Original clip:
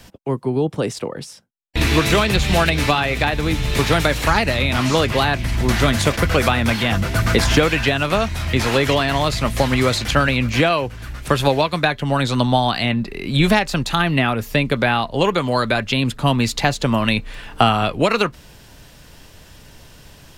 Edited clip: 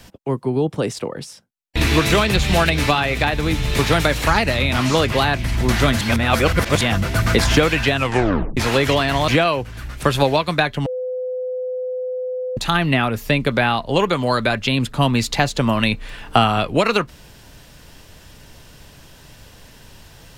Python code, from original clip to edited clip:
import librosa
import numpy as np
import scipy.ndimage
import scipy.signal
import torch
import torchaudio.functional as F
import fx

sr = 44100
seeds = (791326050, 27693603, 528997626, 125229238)

y = fx.edit(x, sr, fx.reverse_span(start_s=6.01, length_s=0.8),
    fx.tape_stop(start_s=7.97, length_s=0.6),
    fx.cut(start_s=9.28, length_s=1.25),
    fx.bleep(start_s=12.11, length_s=1.71, hz=507.0, db=-22.0), tone=tone)